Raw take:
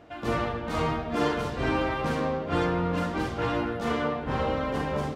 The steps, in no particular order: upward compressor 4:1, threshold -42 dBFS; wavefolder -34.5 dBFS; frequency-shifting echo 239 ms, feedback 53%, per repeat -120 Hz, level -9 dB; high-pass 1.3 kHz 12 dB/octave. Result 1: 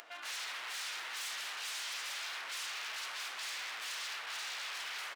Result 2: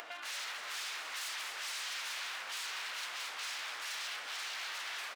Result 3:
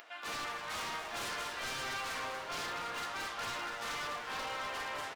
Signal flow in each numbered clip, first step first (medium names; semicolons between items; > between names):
frequency-shifting echo > wavefolder > upward compressor > high-pass; wavefolder > frequency-shifting echo > high-pass > upward compressor; upward compressor > high-pass > wavefolder > frequency-shifting echo